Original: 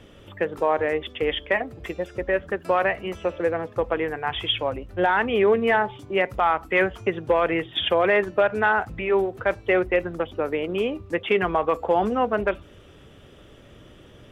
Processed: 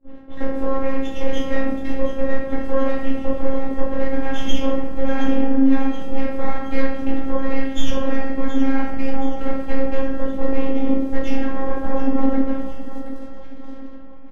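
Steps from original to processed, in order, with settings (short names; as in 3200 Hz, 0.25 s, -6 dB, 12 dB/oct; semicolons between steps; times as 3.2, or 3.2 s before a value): notches 60/120/180/240/300 Hz; gate with hold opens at -37 dBFS; half-wave rectifier; crackle 84/s -36 dBFS; high shelf 2100 Hz -11.5 dB; limiter -19.5 dBFS, peak gain reduction 8.5 dB; bell 190 Hz +11 dB 1.1 oct; compressor 5:1, threshold -28 dBFS, peak gain reduction 9 dB; shoebox room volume 210 m³, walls mixed, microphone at 2.5 m; robotiser 269 Hz; feedback echo 0.723 s, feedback 50%, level -12 dB; low-pass opened by the level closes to 740 Hz, open at -23.5 dBFS; gain +4.5 dB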